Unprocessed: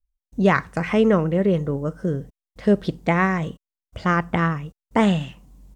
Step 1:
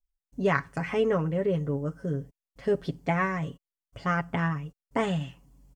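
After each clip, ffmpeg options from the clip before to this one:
ffmpeg -i in.wav -af "bandreject=frequency=3800:width=9.5,aecho=1:1:7.2:0.7,volume=-8.5dB" out.wav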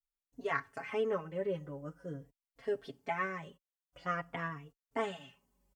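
ffmpeg -i in.wav -filter_complex "[0:a]bass=frequency=250:gain=-10,treble=frequency=4000:gain=-12,crystalizer=i=2.5:c=0,asplit=2[link_01][link_02];[link_02]adelay=3.7,afreqshift=-0.47[link_03];[link_01][link_03]amix=inputs=2:normalize=1,volume=-5.5dB" out.wav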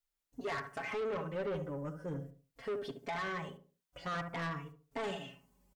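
ffmpeg -i in.wav -filter_complex "[0:a]alimiter=level_in=4.5dB:limit=-24dB:level=0:latency=1:release=12,volume=-4.5dB,asplit=2[link_01][link_02];[link_02]adelay=71,lowpass=frequency=1200:poles=1,volume=-9dB,asplit=2[link_03][link_04];[link_04]adelay=71,lowpass=frequency=1200:poles=1,volume=0.33,asplit=2[link_05][link_06];[link_06]adelay=71,lowpass=frequency=1200:poles=1,volume=0.33,asplit=2[link_07][link_08];[link_08]adelay=71,lowpass=frequency=1200:poles=1,volume=0.33[link_09];[link_03][link_05][link_07][link_09]amix=inputs=4:normalize=0[link_10];[link_01][link_10]amix=inputs=2:normalize=0,asoftclip=type=tanh:threshold=-38dB,volume=5dB" out.wav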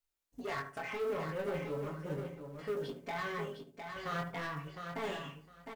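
ffmpeg -i in.wav -filter_complex "[0:a]flanger=delay=18.5:depth=6.7:speed=0.4,acrusher=bits=7:mode=log:mix=0:aa=0.000001,asplit=2[link_01][link_02];[link_02]aecho=0:1:708|1416|2124:0.473|0.0804|0.0137[link_03];[link_01][link_03]amix=inputs=2:normalize=0,volume=2.5dB" out.wav

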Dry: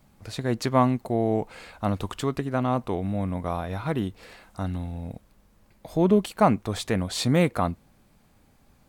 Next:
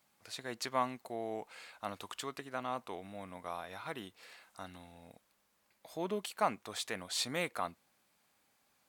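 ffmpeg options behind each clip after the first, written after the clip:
ffmpeg -i in.wav -af "highpass=frequency=1400:poles=1,volume=-5dB" out.wav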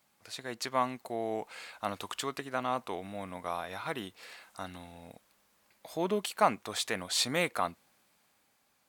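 ffmpeg -i in.wav -af "dynaudnorm=framelen=180:gausssize=11:maxgain=4dB,volume=2dB" out.wav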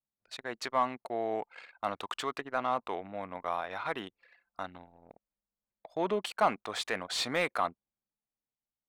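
ffmpeg -i in.wav -filter_complex "[0:a]anlmdn=0.1,asoftclip=type=tanh:threshold=-15.5dB,asplit=2[link_01][link_02];[link_02]highpass=frequency=720:poles=1,volume=10dB,asoftclip=type=tanh:threshold=-13.5dB[link_03];[link_01][link_03]amix=inputs=2:normalize=0,lowpass=frequency=1900:poles=1,volume=-6dB" out.wav

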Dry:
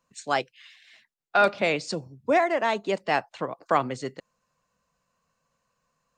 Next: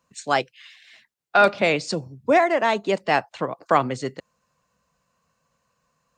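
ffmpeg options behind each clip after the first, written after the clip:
ffmpeg -i in.wav -af "highpass=56,lowshelf=frequency=88:gain=6,volume=4dB" out.wav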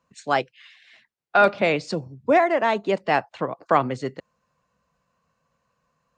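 ffmpeg -i in.wav -af "lowpass=frequency=3000:poles=1" out.wav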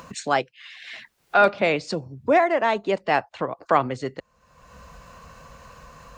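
ffmpeg -i in.wav -af "asubboost=boost=5:cutoff=68,acompressor=mode=upward:threshold=-24dB:ratio=2.5" out.wav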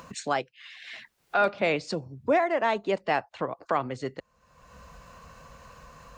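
ffmpeg -i in.wav -af "alimiter=limit=-10dB:level=0:latency=1:release=285,volume=-3.5dB" out.wav

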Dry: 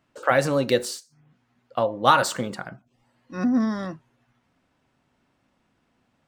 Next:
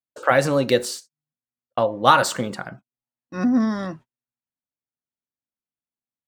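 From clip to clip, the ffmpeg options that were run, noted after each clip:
ffmpeg -i in.wav -af "agate=range=-37dB:threshold=-44dB:ratio=16:detection=peak,volume=2.5dB" out.wav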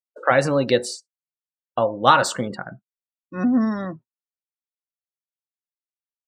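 ffmpeg -i in.wav -af "afftdn=noise_reduction=27:noise_floor=-37" out.wav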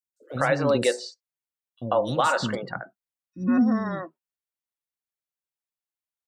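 ffmpeg -i in.wav -filter_complex "[0:a]acrossover=split=330|5100[link_01][link_02][link_03];[link_01]adelay=40[link_04];[link_02]adelay=140[link_05];[link_04][link_05][link_03]amix=inputs=3:normalize=0,alimiter=limit=-11dB:level=0:latency=1:release=151" out.wav

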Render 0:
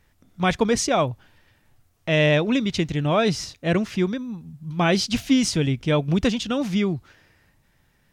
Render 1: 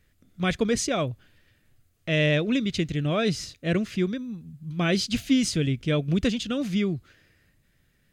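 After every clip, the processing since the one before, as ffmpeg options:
ffmpeg -i in.wav -af "equalizer=frequency=890:width=2.4:gain=-13.5,bandreject=frequency=5600:width=13,volume=-2.5dB" out.wav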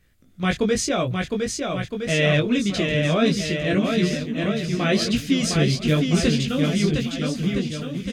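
ffmpeg -i in.wav -filter_complex "[0:a]flanger=delay=17:depth=3.8:speed=0.96,asplit=2[link_01][link_02];[link_02]aecho=0:1:710|1314|1826|2263|2633:0.631|0.398|0.251|0.158|0.1[link_03];[link_01][link_03]amix=inputs=2:normalize=0,volume=6dB" out.wav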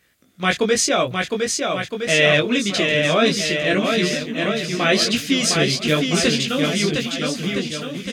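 ffmpeg -i in.wav -af "highpass=frequency=520:poles=1,volume=7dB" out.wav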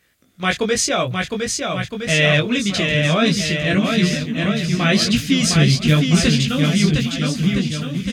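ffmpeg -i in.wav -af "asubboost=boost=8.5:cutoff=150" out.wav

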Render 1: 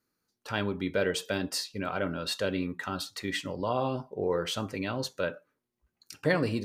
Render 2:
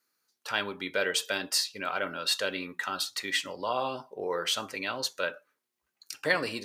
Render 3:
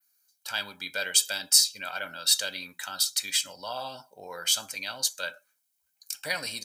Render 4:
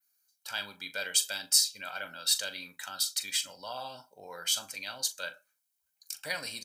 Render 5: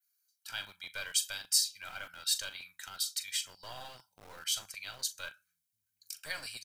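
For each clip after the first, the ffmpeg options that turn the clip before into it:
ffmpeg -i in.wav -af "highpass=frequency=1300:poles=1,volume=6dB" out.wav
ffmpeg -i in.wav -af "aecho=1:1:1.3:0.63,adynamicequalizer=threshold=0.00891:dfrequency=6700:dqfactor=0.81:tfrequency=6700:tqfactor=0.81:attack=5:release=100:ratio=0.375:range=2.5:mode=boostabove:tftype=bell,crystalizer=i=4.5:c=0,volume=-8.5dB" out.wav
ffmpeg -i in.wav -filter_complex "[0:a]asplit=2[link_01][link_02];[link_02]adelay=40,volume=-13dB[link_03];[link_01][link_03]amix=inputs=2:normalize=0,volume=-4.5dB" out.wav
ffmpeg -i in.wav -filter_complex "[0:a]acrossover=split=130|1100[link_01][link_02][link_03];[link_01]aecho=1:1:1162:0.0891[link_04];[link_02]acrusher=bits=5:dc=4:mix=0:aa=0.000001[link_05];[link_04][link_05][link_03]amix=inputs=3:normalize=0,volume=-4dB" out.wav

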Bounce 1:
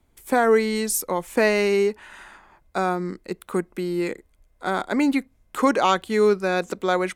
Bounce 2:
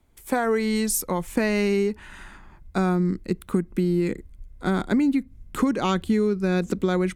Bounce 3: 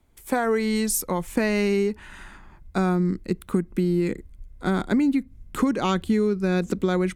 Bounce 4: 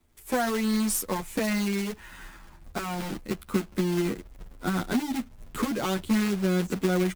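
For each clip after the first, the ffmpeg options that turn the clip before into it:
ffmpeg -i in.wav -af "asubboost=boost=8:cutoff=240,acompressor=threshold=-18dB:ratio=12" out.wav
ffmpeg -i in.wav -af anull out.wav
ffmpeg -i in.wav -filter_complex "[0:a]asplit=2[link_01][link_02];[link_02]asoftclip=type=hard:threshold=-27.5dB,volume=-10.5dB[link_03];[link_01][link_03]amix=inputs=2:normalize=0,acrusher=bits=2:mode=log:mix=0:aa=0.000001,asplit=2[link_04][link_05];[link_05]adelay=9.3,afreqshift=-0.4[link_06];[link_04][link_06]amix=inputs=2:normalize=1,volume=-2dB" out.wav

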